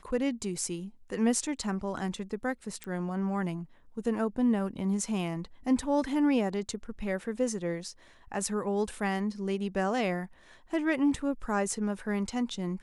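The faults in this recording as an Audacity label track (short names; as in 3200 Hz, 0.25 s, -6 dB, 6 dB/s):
2.840000	2.840000	pop -23 dBFS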